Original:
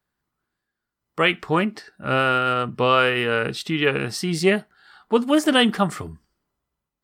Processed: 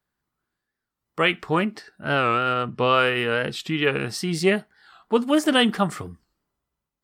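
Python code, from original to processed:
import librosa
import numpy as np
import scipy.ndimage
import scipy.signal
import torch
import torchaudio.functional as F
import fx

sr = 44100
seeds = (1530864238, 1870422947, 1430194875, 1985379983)

y = fx.lowpass(x, sr, hz=7200.0, slope=12, at=(2.16, 2.94))
y = fx.record_warp(y, sr, rpm=45.0, depth_cents=160.0)
y = F.gain(torch.from_numpy(y), -1.5).numpy()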